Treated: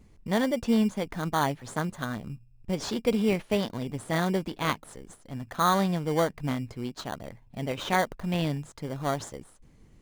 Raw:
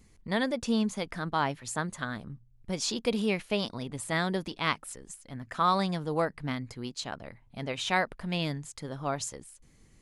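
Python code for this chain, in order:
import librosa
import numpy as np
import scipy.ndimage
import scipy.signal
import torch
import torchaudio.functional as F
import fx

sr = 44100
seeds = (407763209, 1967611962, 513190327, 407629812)

p1 = fx.high_shelf(x, sr, hz=4500.0, db=-9.5)
p2 = fx.sample_hold(p1, sr, seeds[0], rate_hz=2600.0, jitter_pct=0)
y = p1 + (p2 * librosa.db_to_amplitude(-4.0))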